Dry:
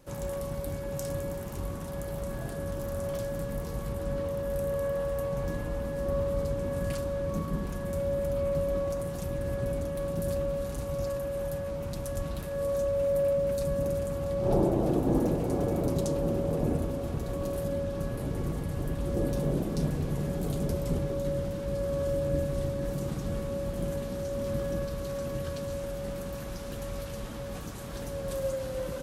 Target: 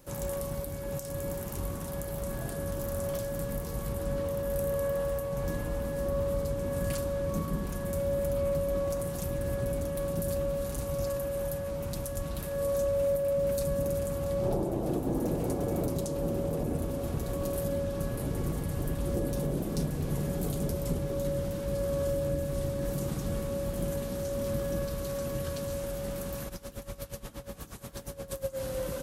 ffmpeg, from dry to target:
-filter_complex "[0:a]highshelf=f=8.3k:g=10,alimiter=limit=-20.5dB:level=0:latency=1:release=289,asplit=3[a][b][c];[a]afade=t=out:st=26.48:d=0.02[d];[b]aeval=exprs='val(0)*pow(10,-18*(0.5-0.5*cos(2*PI*8.4*n/s))/20)':c=same,afade=t=in:st=26.48:d=0.02,afade=t=out:st=28.56:d=0.02[e];[c]afade=t=in:st=28.56:d=0.02[f];[d][e][f]amix=inputs=3:normalize=0"

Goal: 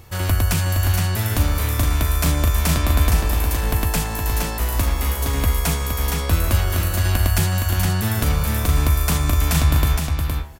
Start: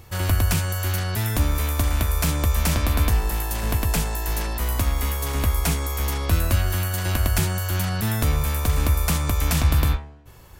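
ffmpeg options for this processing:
-af "aecho=1:1:466:0.562,volume=1.5dB"

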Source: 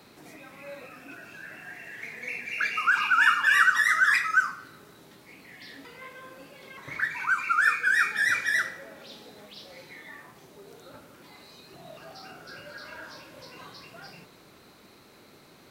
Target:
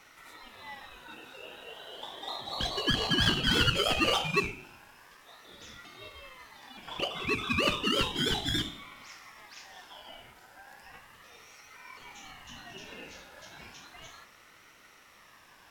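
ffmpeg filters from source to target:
-af "aeval=exprs='clip(val(0),-1,0.0422)':c=same,aeval=exprs='val(0)*sin(2*PI*1400*n/s+1400*0.2/0.34*sin(2*PI*0.34*n/s))':c=same"

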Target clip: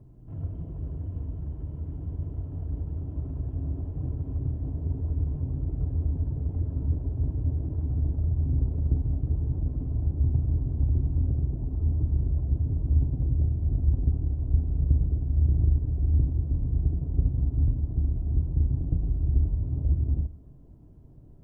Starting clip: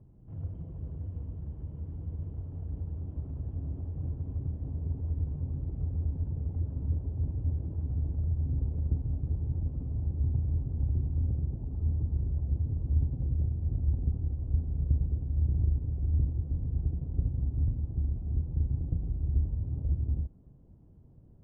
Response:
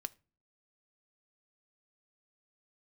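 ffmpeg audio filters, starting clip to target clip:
-filter_complex "[1:a]atrim=start_sample=2205[a];[0:a][a]afir=irnorm=-1:irlink=0,volume=8dB"

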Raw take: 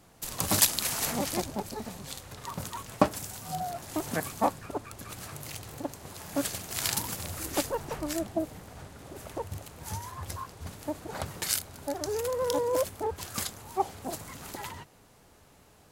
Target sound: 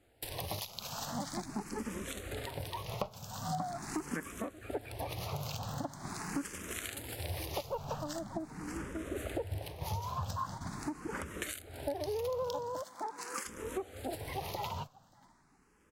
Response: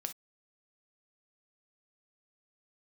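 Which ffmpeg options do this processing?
-filter_complex "[0:a]aecho=1:1:583|1166|1749:0.15|0.0419|0.0117,agate=range=-15dB:threshold=-46dB:ratio=16:detection=peak,asettb=1/sr,asplit=3[a][b][c];[a]atrim=end=12.824[d];[b]atrim=start=12.82:end=13.45,asetpts=PTS-STARTPTS,afade=t=in:d=0.004:c=qsin,afade=t=out:st=0.626:d=0.004:c=qsin,highpass=410[e];[c]atrim=start=13.446[f];[d][e]acrossfade=d=0.004:c1=hsin:c2=qsin[g];[g][f]acrossfade=d=0.004:c1=qsin:c2=hsin,acompressor=threshold=-40dB:ratio=10,highshelf=f=5.5k:g=-8.5,asplit=2[h][i];[i]afreqshift=0.43[j];[h][j]amix=inputs=2:normalize=1,volume=9dB"

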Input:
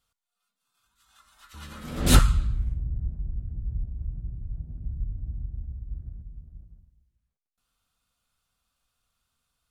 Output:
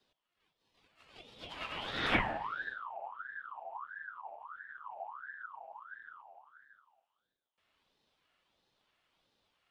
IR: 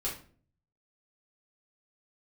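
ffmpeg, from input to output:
-filter_complex "[0:a]aemphasis=mode=production:type=riaa,acrossover=split=470|1300[a][b][c];[a]aeval=exprs='0.02*(abs(mod(val(0)/0.02+3,4)-2)-1)':c=same[d];[b]afreqshift=-340[e];[c]acompressor=threshold=-38dB:ratio=6[f];[d][e][f]amix=inputs=3:normalize=0,lowpass=f=2k:t=q:w=6,asplit=2[g][h];[1:a]atrim=start_sample=2205,asetrate=88200,aresample=44100,adelay=143[i];[h][i]afir=irnorm=-1:irlink=0,volume=-16dB[j];[g][j]amix=inputs=2:normalize=0,aeval=exprs='val(0)*sin(2*PI*1200*n/s+1200*0.4/1.5*sin(2*PI*1.5*n/s))':c=same,volume=3.5dB"

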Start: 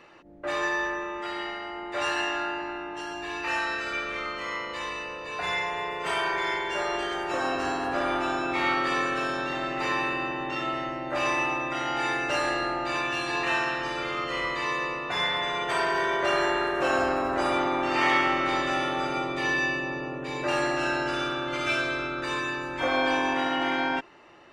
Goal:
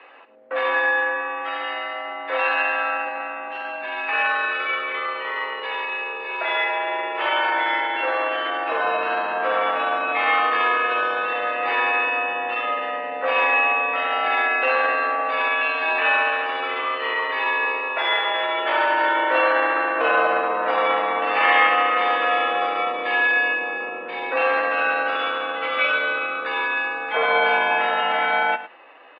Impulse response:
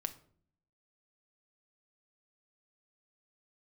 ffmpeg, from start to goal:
-filter_complex "[0:a]highpass=f=520:t=q:w=0.5412,highpass=f=520:t=q:w=1.307,lowpass=f=3.4k:t=q:w=0.5176,lowpass=f=3.4k:t=q:w=0.7071,lowpass=f=3.4k:t=q:w=1.932,afreqshift=-66,asplit=2[a][b];[1:a]atrim=start_sample=2205,atrim=end_sample=3528,highshelf=f=8.6k:g=4.5[c];[b][c]afir=irnorm=-1:irlink=0,volume=3dB[d];[a][d]amix=inputs=2:normalize=0,atempo=0.84,aecho=1:1:106:0.2"

